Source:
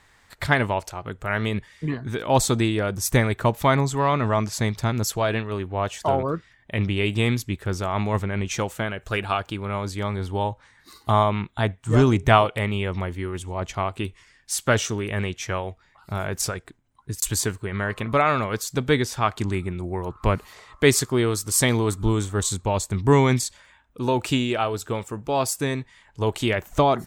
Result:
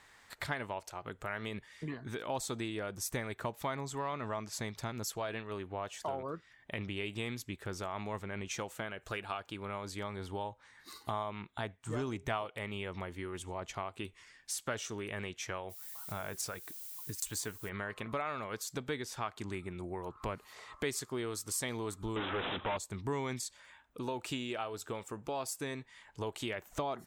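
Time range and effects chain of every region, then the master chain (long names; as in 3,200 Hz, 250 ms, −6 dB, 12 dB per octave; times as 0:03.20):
0:15.69–0:17.68: notch filter 380 Hz + background noise violet −43 dBFS
0:22.16–0:22.77: mid-hump overdrive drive 36 dB, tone 4,100 Hz, clips at −12 dBFS + bad sample-rate conversion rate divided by 6×, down none, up filtered
whole clip: low-shelf EQ 170 Hz −10.5 dB; downward compressor 2.5 to 1, threshold −38 dBFS; level −2.5 dB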